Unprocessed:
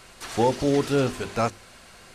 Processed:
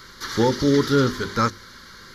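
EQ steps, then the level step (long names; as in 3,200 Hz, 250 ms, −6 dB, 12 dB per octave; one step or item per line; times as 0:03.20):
low-shelf EQ 170 Hz −5.5 dB
phaser with its sweep stopped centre 2,600 Hz, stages 6
+8.5 dB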